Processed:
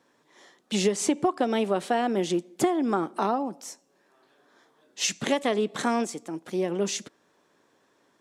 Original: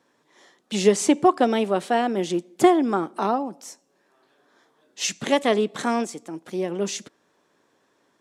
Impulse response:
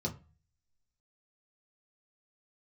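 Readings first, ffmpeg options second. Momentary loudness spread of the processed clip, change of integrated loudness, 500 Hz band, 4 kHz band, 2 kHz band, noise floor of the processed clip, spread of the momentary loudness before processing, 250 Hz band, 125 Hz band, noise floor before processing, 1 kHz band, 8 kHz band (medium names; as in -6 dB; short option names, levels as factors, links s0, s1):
8 LU, -4.0 dB, -4.5 dB, -2.0 dB, -3.5 dB, -67 dBFS, 14 LU, -4.0 dB, -2.0 dB, -67 dBFS, -5.0 dB, -1.5 dB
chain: -af "acompressor=threshold=0.1:ratio=6"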